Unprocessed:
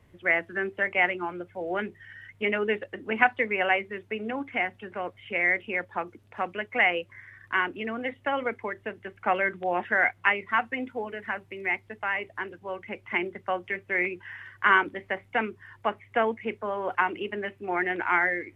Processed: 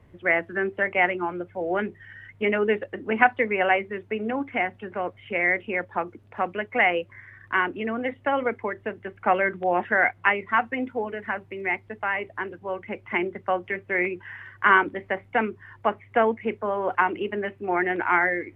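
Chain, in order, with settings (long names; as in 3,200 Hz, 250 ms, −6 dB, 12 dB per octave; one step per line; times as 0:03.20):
high-shelf EQ 2,700 Hz −11 dB
level +5 dB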